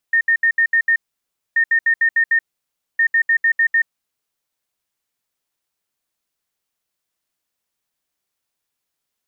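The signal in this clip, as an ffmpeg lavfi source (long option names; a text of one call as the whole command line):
ffmpeg -f lavfi -i "aevalsrc='0.266*sin(2*PI*1830*t)*clip(min(mod(mod(t,1.43),0.15),0.08-mod(mod(t,1.43),0.15))/0.005,0,1)*lt(mod(t,1.43),0.9)':duration=4.29:sample_rate=44100" out.wav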